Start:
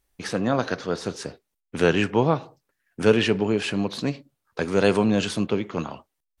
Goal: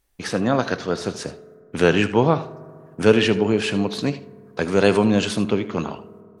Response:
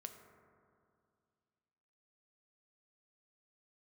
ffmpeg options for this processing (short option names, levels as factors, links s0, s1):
-filter_complex "[0:a]asplit=2[s0][s1];[1:a]atrim=start_sample=2205,adelay=77[s2];[s1][s2]afir=irnorm=-1:irlink=0,volume=0.335[s3];[s0][s3]amix=inputs=2:normalize=0,volume=1.41"